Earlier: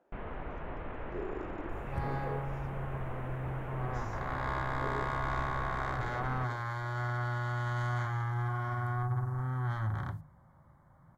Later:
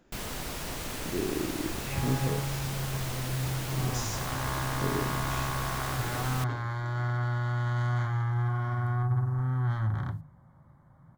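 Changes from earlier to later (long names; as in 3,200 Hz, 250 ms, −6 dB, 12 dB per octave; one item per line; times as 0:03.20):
speech: remove resonant band-pass 660 Hz, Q 1.3
first sound: remove Gaussian smoothing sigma 4.6 samples
master: add octave-band graphic EQ 125/250/4,000 Hz +5/+4/+3 dB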